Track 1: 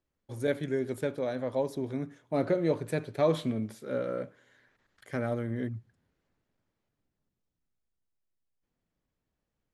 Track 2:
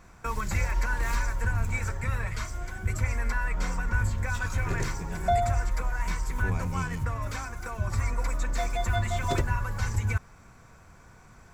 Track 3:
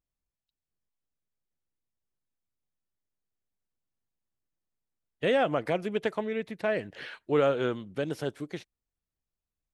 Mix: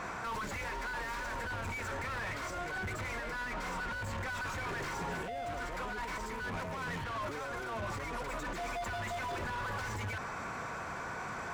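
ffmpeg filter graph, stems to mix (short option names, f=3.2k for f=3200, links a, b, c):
-filter_complex "[0:a]volume=-15.5dB[a];[1:a]asplit=2[b][c];[c]highpass=f=720:p=1,volume=40dB,asoftclip=type=tanh:threshold=-12.5dB[d];[b][d]amix=inputs=2:normalize=0,lowpass=f=1.6k:p=1,volume=-6dB,volume=-11.5dB[e];[2:a]acompressor=threshold=-35dB:ratio=6,volume=0.5dB[f];[a][e][f]amix=inputs=3:normalize=0,alimiter=level_in=9dB:limit=-24dB:level=0:latency=1:release=19,volume=-9dB"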